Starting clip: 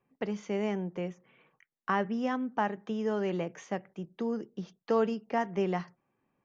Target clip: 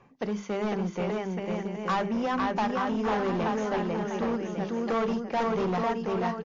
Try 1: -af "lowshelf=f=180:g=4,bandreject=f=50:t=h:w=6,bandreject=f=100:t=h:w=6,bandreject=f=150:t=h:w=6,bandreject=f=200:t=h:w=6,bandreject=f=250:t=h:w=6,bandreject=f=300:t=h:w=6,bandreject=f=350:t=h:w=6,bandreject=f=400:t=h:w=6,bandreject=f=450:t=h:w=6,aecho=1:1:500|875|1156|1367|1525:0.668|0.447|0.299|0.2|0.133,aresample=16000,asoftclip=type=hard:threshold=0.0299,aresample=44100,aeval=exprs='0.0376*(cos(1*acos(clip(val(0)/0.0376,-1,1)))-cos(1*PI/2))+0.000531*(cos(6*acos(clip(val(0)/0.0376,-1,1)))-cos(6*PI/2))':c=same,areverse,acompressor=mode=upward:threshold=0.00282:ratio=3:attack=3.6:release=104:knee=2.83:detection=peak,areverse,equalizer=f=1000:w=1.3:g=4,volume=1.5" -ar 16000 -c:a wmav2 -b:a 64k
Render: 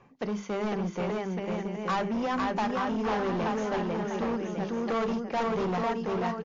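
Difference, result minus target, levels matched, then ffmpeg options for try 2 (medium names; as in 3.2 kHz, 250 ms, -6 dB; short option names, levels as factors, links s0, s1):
hard clipper: distortion +13 dB
-af "lowshelf=f=180:g=4,bandreject=f=50:t=h:w=6,bandreject=f=100:t=h:w=6,bandreject=f=150:t=h:w=6,bandreject=f=200:t=h:w=6,bandreject=f=250:t=h:w=6,bandreject=f=300:t=h:w=6,bandreject=f=350:t=h:w=6,bandreject=f=400:t=h:w=6,bandreject=f=450:t=h:w=6,aecho=1:1:500|875|1156|1367|1525:0.668|0.447|0.299|0.2|0.133,aresample=16000,asoftclip=type=hard:threshold=0.0944,aresample=44100,aeval=exprs='0.0376*(cos(1*acos(clip(val(0)/0.0376,-1,1)))-cos(1*PI/2))+0.000531*(cos(6*acos(clip(val(0)/0.0376,-1,1)))-cos(6*PI/2))':c=same,areverse,acompressor=mode=upward:threshold=0.00282:ratio=3:attack=3.6:release=104:knee=2.83:detection=peak,areverse,equalizer=f=1000:w=1.3:g=4,volume=1.5" -ar 16000 -c:a wmav2 -b:a 64k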